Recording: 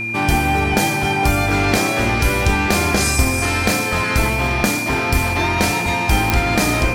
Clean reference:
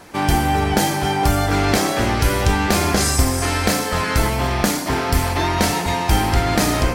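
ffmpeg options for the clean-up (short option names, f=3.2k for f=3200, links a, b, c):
-af "adeclick=t=4,bandreject=f=112.8:t=h:w=4,bandreject=f=225.6:t=h:w=4,bandreject=f=338.4:t=h:w=4,bandreject=f=2.4k:w=30"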